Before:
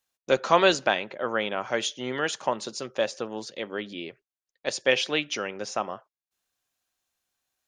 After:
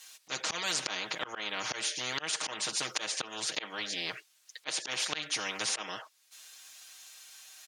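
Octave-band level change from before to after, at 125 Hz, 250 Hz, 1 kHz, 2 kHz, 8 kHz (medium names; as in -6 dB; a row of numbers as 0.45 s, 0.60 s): -10.5 dB, -13.5 dB, -11.5 dB, -6.5 dB, +3.5 dB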